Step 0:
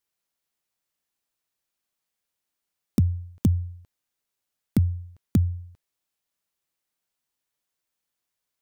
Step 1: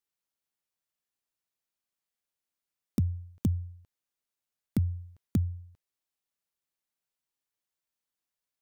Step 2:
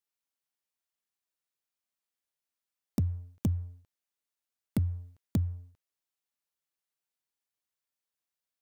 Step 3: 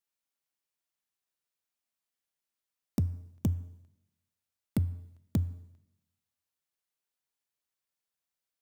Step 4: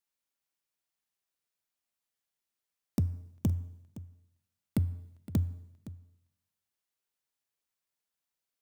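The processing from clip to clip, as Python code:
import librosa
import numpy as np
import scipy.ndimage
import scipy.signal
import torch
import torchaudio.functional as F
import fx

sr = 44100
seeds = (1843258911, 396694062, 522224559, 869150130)

y1 = fx.rider(x, sr, range_db=4, speed_s=0.5)
y1 = y1 * librosa.db_to_amplitude(-6.0)
y2 = fx.low_shelf(y1, sr, hz=340.0, db=-4.5)
y2 = fx.leveller(y2, sr, passes=1)
y3 = fx.rev_plate(y2, sr, seeds[0], rt60_s=0.95, hf_ratio=0.95, predelay_ms=0, drr_db=18.0)
y4 = y3 + 10.0 ** (-16.5 / 20.0) * np.pad(y3, (int(515 * sr / 1000.0), 0))[:len(y3)]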